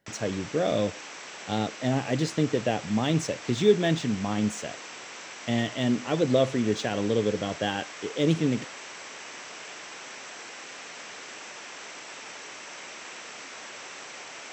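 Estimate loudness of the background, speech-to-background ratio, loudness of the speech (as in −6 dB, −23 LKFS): −40.0 LKFS, 13.0 dB, −27.0 LKFS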